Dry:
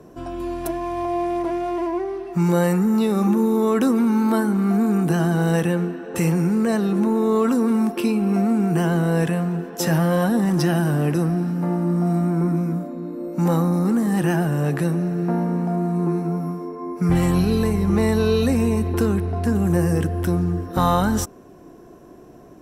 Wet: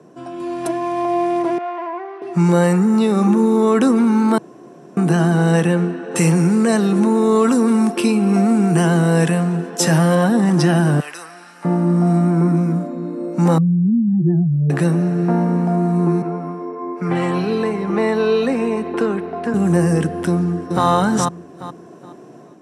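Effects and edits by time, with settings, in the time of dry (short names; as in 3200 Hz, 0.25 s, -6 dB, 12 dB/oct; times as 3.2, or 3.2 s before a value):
1.58–2.22 BPF 720–2300 Hz
4.38–4.97 room tone
6.11–10.15 high shelf 4700 Hz +7.5 dB
11–11.65 HPF 1400 Hz
13.58–14.7 spectral contrast raised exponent 3.1
16.22–19.54 three-band isolator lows -12 dB, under 260 Hz, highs -13 dB, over 3600 Hz
20.28–20.86 echo throw 0.42 s, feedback 25%, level -3.5 dB
whole clip: elliptic band-pass 140–9600 Hz, stop band 40 dB; AGC gain up to 5.5 dB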